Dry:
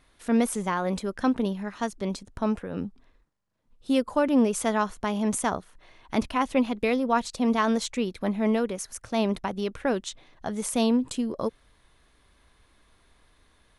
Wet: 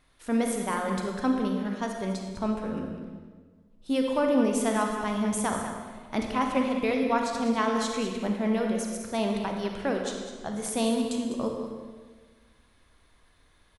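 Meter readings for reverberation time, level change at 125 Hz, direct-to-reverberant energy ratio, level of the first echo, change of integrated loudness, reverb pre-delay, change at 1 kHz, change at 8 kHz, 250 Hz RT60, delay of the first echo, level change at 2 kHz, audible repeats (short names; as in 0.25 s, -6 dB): 1.5 s, -1.0 dB, 1.5 dB, -10.5 dB, -1.5 dB, 35 ms, -1.0 dB, -1.0 dB, 1.7 s, 0.201 s, -1.0 dB, 1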